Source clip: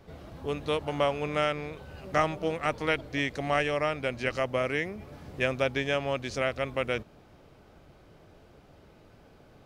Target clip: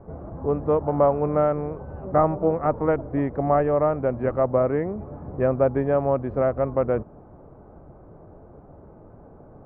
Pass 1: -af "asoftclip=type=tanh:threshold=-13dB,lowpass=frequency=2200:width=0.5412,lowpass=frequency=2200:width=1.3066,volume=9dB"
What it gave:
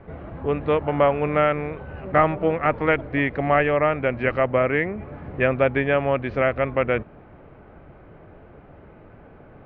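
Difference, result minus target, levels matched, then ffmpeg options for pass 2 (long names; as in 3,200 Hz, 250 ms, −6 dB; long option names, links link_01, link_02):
2,000 Hz band +14.0 dB
-af "asoftclip=type=tanh:threshold=-13dB,lowpass=frequency=1100:width=0.5412,lowpass=frequency=1100:width=1.3066,volume=9dB"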